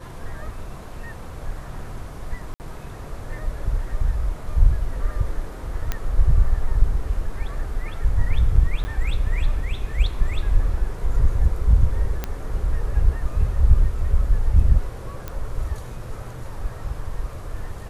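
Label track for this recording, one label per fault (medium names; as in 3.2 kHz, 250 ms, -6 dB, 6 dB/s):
2.540000	2.600000	dropout 59 ms
5.920000	5.920000	pop -10 dBFS
8.840000	8.850000	dropout 10 ms
12.240000	12.240000	pop -11 dBFS
15.280000	15.280000	pop -16 dBFS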